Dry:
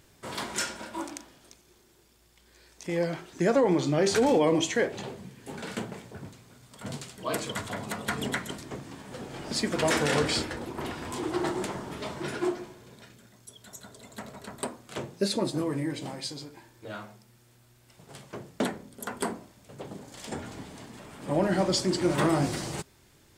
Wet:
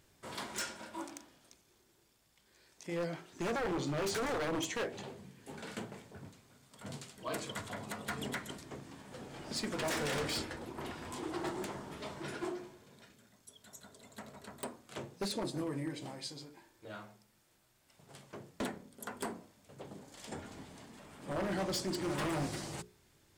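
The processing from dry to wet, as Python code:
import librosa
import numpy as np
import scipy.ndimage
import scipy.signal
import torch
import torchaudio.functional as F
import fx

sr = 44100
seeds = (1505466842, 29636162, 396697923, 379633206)

y = fx.hum_notches(x, sr, base_hz=60, count=8)
y = 10.0 ** (-22.0 / 20.0) * (np.abs((y / 10.0 ** (-22.0 / 20.0) + 3.0) % 4.0 - 2.0) - 1.0)
y = y * librosa.db_to_amplitude(-7.5)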